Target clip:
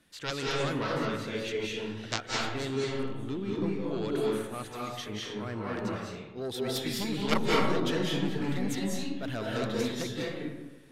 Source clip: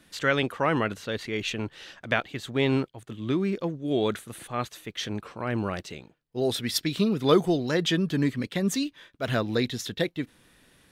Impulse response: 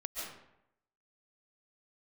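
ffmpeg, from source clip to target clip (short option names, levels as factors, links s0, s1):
-filter_complex "[0:a]aeval=exprs='0.398*(cos(1*acos(clip(val(0)/0.398,-1,1)))-cos(1*PI/2))+0.2*(cos(3*acos(clip(val(0)/0.398,-1,1)))-cos(3*PI/2))+0.00794*(cos(4*acos(clip(val(0)/0.398,-1,1)))-cos(4*PI/2))':c=same[s0];[1:a]atrim=start_sample=2205,asetrate=30870,aresample=44100[s1];[s0][s1]afir=irnorm=-1:irlink=0"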